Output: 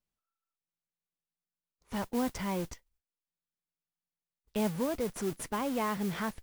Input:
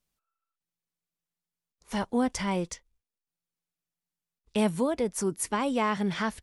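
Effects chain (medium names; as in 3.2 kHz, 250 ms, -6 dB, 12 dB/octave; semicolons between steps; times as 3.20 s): treble shelf 3.8 kHz -8 dB; modulation noise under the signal 15 dB; in parallel at -6 dB: Schmitt trigger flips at -37 dBFS; on the sum: trim -6.5 dB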